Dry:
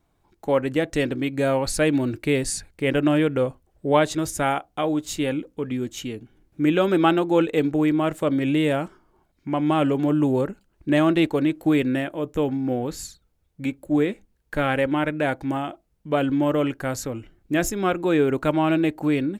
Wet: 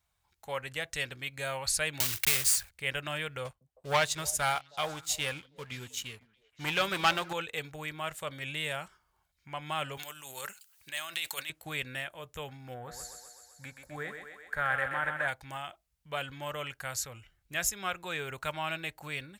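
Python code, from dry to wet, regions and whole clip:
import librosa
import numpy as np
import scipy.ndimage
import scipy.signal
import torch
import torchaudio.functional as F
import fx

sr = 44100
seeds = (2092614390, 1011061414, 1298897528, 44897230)

y = fx.chain(x, sr, fx.block_float(bits=3),
    fx.high_shelf(hz=11000.0, db=8.5),
    fx.band_squash(depth_pct=100), at=(2.0, 2.71))
y = fx.chain(y, sr, fx.leveller(passes=2),
    fx.echo_stepped(ms=158, hz=210.0, octaves=1.4, feedback_pct=70, wet_db=-11.0),
    fx.upward_expand(threshold_db=-27.0, expansion=1.5), at=(3.45, 7.33))
y = fx.chain(y, sr, fx.over_compress(threshold_db=-24.0, ratio=-1.0),
    fx.tilt_eq(slope=4.5), at=(9.97, 11.5))
y = fx.chain(y, sr, fx.high_shelf_res(hz=2100.0, db=-6.5, q=3.0),
    fx.echo_thinned(ms=128, feedback_pct=69, hz=270.0, wet_db=-6.0), at=(12.74, 15.28))
y = scipy.signal.sosfilt(scipy.signal.butter(2, 52.0, 'highpass', fs=sr, output='sos'), y)
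y = fx.tone_stack(y, sr, knobs='10-0-10')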